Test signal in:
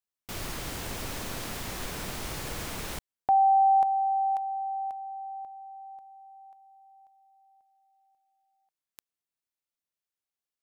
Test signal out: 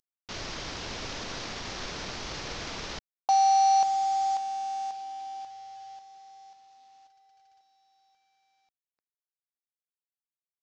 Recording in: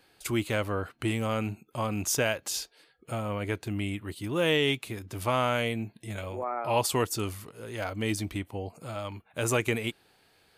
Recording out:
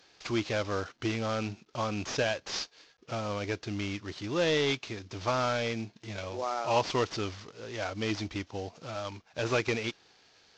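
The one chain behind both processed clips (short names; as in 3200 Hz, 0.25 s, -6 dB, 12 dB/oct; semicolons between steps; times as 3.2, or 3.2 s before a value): CVSD 32 kbps; tone controls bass -4 dB, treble +6 dB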